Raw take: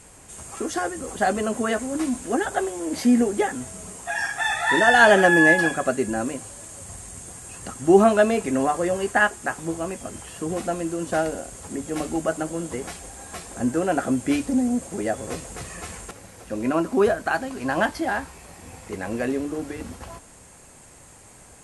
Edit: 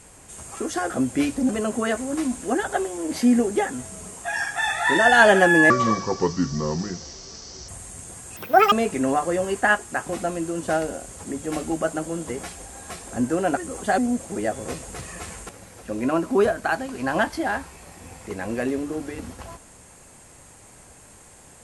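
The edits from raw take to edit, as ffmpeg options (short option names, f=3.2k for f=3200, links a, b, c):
-filter_complex "[0:a]asplit=10[a][b][c][d][e][f][g][h][i][j];[a]atrim=end=0.902[k];[b]atrim=start=14.008:end=14.602[l];[c]atrim=start=1.308:end=5.524[m];[d]atrim=start=5.52:end=6.87,asetpts=PTS-STARTPTS,asetrate=29988,aresample=44100,atrim=end_sample=87551,asetpts=PTS-STARTPTS[n];[e]atrim=start=6.866:end=7.554[o];[f]atrim=start=7.55:end=8.24,asetpts=PTS-STARTPTS,asetrate=85554,aresample=44100,atrim=end_sample=15685,asetpts=PTS-STARTPTS[p];[g]atrim=start=8.236:end=9.612[q];[h]atrim=start=10.528:end=14.012[r];[i]atrim=start=0.898:end=1.312[s];[j]atrim=start=14.598[t];[k][l]acrossfade=d=0.004:c1=hsin:c2=hsin[u];[u][m]acrossfade=d=0.004:c1=hsin:c2=hsin[v];[v][n]acrossfade=d=0.004:c1=hsin:c2=hsin[w];[w][o]acrossfade=d=0.004:c1=hsin:c2=hsin[x];[x][p]acrossfade=d=0.004:c1=hsin:c2=hsin[y];[y][q]acrossfade=d=0.004:c1=hsin:c2=hsin[z];[z][r]acrossfade=d=0.004:c1=hsin:c2=hsin[aa];[aa][s]acrossfade=d=0.004:c1=hsin:c2=hsin[ab];[ab][t]acrossfade=d=0.004:c1=hsin:c2=hsin"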